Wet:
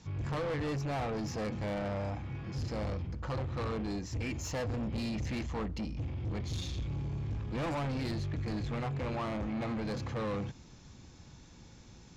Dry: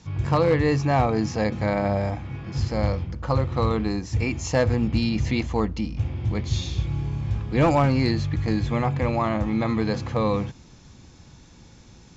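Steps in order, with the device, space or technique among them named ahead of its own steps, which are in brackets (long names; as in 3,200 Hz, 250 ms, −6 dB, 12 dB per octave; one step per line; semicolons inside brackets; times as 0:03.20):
saturation between pre-emphasis and de-emphasis (high-shelf EQ 6,200 Hz +7.5 dB; soft clipping −27 dBFS, distortion −7 dB; high-shelf EQ 6,200 Hz −7.5 dB)
level −5 dB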